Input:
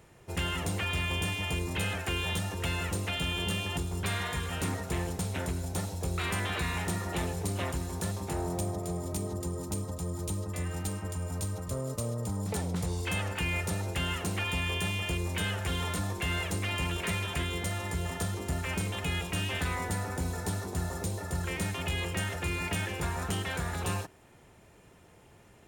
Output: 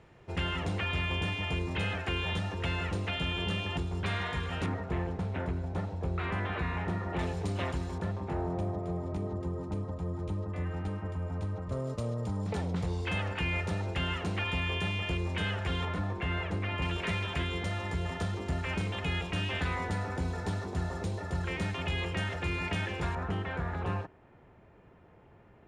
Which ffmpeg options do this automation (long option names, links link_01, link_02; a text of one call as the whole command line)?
ffmpeg -i in.wav -af "asetnsamples=nb_out_samples=441:pad=0,asendcmd='4.66 lowpass f 1900;7.19 lowpass f 4200;7.98 lowpass f 2000;11.72 lowpass f 3700;15.85 lowpass f 2200;16.82 lowpass f 4100;23.15 lowpass f 1800',lowpass=3600" out.wav